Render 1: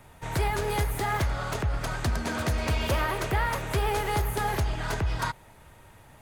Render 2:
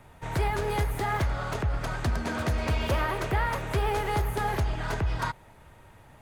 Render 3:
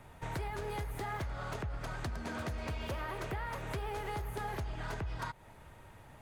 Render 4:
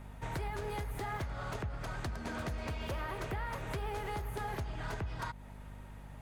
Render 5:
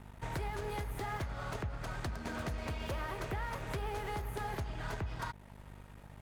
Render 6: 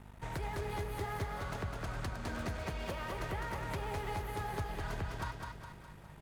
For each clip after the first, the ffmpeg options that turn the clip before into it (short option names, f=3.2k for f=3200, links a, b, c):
-af "highshelf=f=3.9k:g=-6.5"
-af "acompressor=threshold=-35dB:ratio=4,volume=-2dB"
-af "aeval=exprs='val(0)+0.00398*(sin(2*PI*50*n/s)+sin(2*PI*2*50*n/s)/2+sin(2*PI*3*50*n/s)/3+sin(2*PI*4*50*n/s)/4+sin(2*PI*5*50*n/s)/5)':c=same"
-af "aeval=exprs='sgn(val(0))*max(abs(val(0))-0.00224,0)':c=same,volume=1dB"
-af "aecho=1:1:206|412|618|824|1030|1236:0.631|0.315|0.158|0.0789|0.0394|0.0197,volume=-1.5dB"